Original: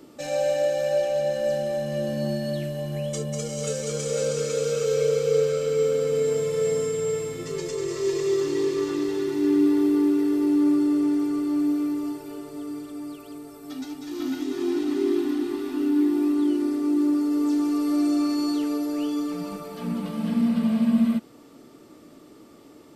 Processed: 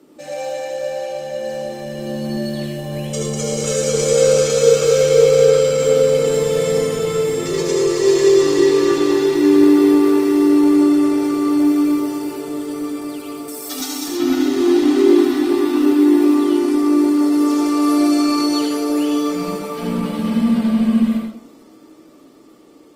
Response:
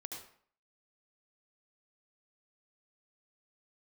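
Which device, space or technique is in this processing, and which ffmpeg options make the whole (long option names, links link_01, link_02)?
far-field microphone of a smart speaker: -filter_complex "[0:a]asettb=1/sr,asplit=3[link_01][link_02][link_03];[link_01]atrim=end=13.484[link_04];[link_02]atrim=start=13.48:end=14.08,asetpts=PTS-STARTPTS,afade=type=in:duration=0.004:curve=qsin,afade=type=out:start_time=0.596:duration=0.004:curve=qsin,bass=frequency=250:gain=-13,treble=frequency=4000:gain=13[link_05];[link_03]atrim=start=14.076[link_06];[link_04][link_05]acrossfade=duration=0.004:curve1=hsin:curve2=qsin[link_07];[link_07][link_06]acrossfade=duration=0.004:curve1=qsin:curve2=hsin[link_08];[1:a]atrim=start_sample=2205[link_09];[link_08][link_09]afir=irnorm=-1:irlink=0,highpass=160,dynaudnorm=framelen=470:gausssize=13:maxgain=11dB,volume=4.5dB" -ar 48000 -c:a libopus -b:a 24k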